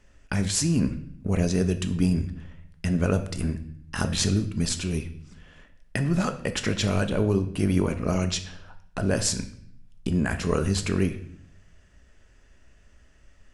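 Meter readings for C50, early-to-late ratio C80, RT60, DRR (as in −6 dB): 12.5 dB, 15.5 dB, 0.65 s, 7.5 dB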